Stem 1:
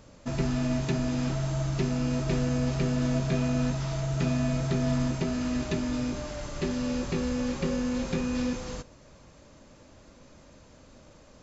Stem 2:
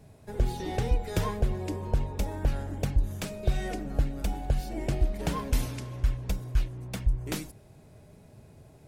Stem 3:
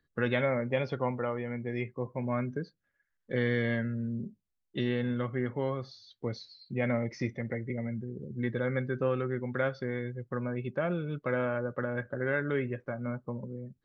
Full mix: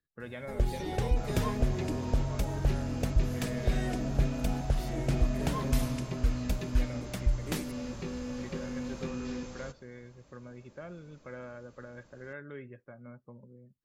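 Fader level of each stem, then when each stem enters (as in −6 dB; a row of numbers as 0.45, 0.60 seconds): −8.5, −2.0, −13.5 decibels; 0.90, 0.20, 0.00 seconds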